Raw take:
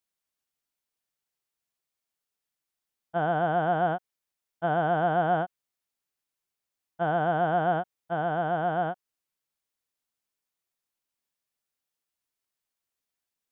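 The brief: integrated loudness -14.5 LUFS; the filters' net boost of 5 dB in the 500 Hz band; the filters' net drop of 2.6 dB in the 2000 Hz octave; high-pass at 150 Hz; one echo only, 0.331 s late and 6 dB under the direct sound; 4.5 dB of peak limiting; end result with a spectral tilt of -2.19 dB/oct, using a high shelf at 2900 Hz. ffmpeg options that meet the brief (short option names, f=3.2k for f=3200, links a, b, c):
-af "highpass=150,equalizer=f=500:t=o:g=8,equalizer=f=2k:t=o:g=-7.5,highshelf=f=2.9k:g=6.5,alimiter=limit=-16dB:level=0:latency=1,aecho=1:1:331:0.501,volume=11.5dB"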